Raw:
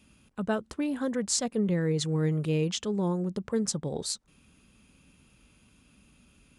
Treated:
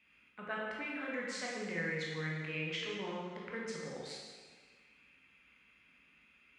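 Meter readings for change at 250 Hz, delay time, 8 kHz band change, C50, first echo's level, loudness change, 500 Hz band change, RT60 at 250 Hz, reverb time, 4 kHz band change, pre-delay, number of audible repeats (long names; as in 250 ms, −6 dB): −15.0 dB, no echo audible, −18.5 dB, −0.5 dB, no echo audible, −10.0 dB, −10.5 dB, 1.6 s, 1.5 s, −7.5 dB, 8 ms, no echo audible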